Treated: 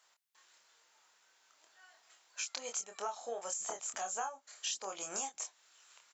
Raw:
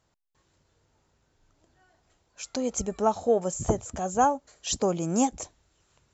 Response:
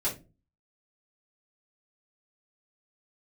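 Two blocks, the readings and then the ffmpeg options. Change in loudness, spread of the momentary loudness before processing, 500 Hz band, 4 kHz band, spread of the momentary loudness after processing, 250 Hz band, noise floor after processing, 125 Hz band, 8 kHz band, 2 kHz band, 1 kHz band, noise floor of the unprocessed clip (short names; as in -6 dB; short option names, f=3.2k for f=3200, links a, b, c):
-12.0 dB, 11 LU, -18.0 dB, -4.0 dB, 5 LU, -29.5 dB, -73 dBFS, under -30 dB, n/a, -4.5 dB, -14.0 dB, -72 dBFS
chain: -filter_complex "[0:a]highpass=1.2k,acompressor=threshold=-44dB:ratio=8,asplit=2[a][b];[b]adelay=26,volume=-5dB[c];[a][c]amix=inputs=2:normalize=0,volume=6.5dB"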